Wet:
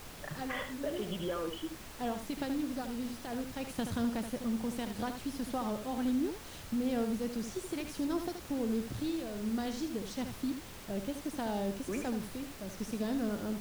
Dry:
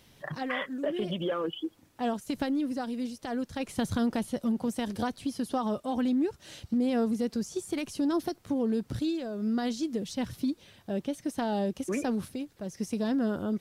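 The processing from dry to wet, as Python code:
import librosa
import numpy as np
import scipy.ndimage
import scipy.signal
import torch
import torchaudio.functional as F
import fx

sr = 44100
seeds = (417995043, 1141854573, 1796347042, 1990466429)

y = x + 10.0 ** (-8.0 / 20.0) * np.pad(x, (int(76 * sr / 1000.0), 0))[:len(x)]
y = fx.dmg_noise_colour(y, sr, seeds[0], colour='pink', level_db=-42.0)
y = y * 10.0 ** (-6.0 / 20.0)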